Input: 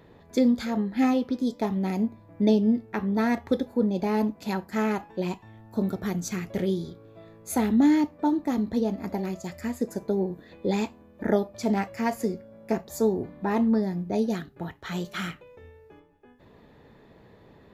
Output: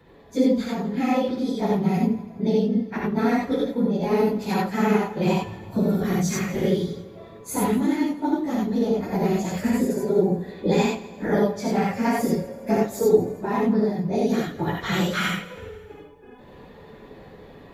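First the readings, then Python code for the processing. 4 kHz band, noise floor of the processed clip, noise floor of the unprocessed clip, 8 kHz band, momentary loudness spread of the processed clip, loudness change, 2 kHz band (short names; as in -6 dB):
+6.5 dB, -46 dBFS, -55 dBFS, +5.5 dB, 6 LU, +3.5 dB, +5.5 dB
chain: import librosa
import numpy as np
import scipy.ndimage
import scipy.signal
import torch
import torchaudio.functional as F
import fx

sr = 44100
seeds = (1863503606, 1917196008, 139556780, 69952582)

p1 = fx.phase_scramble(x, sr, seeds[0], window_ms=50)
p2 = fx.rider(p1, sr, range_db=10, speed_s=0.5)
p3 = p2 + fx.echo_feedback(p2, sr, ms=164, feedback_pct=51, wet_db=-18.0, dry=0)
y = fx.rev_gated(p3, sr, seeds[1], gate_ms=110, shape='rising', drr_db=-2.0)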